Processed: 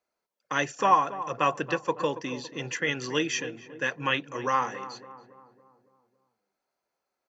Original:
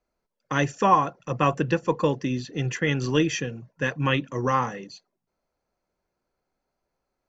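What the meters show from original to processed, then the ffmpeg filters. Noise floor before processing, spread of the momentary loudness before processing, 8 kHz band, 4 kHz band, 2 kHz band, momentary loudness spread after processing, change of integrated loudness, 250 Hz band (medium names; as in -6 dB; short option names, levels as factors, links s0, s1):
-82 dBFS, 9 LU, no reading, 0.0 dB, -0.5 dB, 12 LU, -3.0 dB, -8.0 dB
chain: -filter_complex "[0:a]highpass=f=650:p=1,asplit=2[s0][s1];[s1]adelay=279,lowpass=f=1300:p=1,volume=0.237,asplit=2[s2][s3];[s3]adelay=279,lowpass=f=1300:p=1,volume=0.54,asplit=2[s4][s5];[s5]adelay=279,lowpass=f=1300:p=1,volume=0.54,asplit=2[s6][s7];[s7]adelay=279,lowpass=f=1300:p=1,volume=0.54,asplit=2[s8][s9];[s9]adelay=279,lowpass=f=1300:p=1,volume=0.54,asplit=2[s10][s11];[s11]adelay=279,lowpass=f=1300:p=1,volume=0.54[s12];[s2][s4][s6][s8][s10][s12]amix=inputs=6:normalize=0[s13];[s0][s13]amix=inputs=2:normalize=0"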